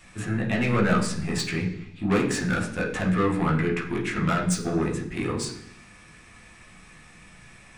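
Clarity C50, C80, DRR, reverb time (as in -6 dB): 8.0 dB, 11.0 dB, -3.0 dB, 0.70 s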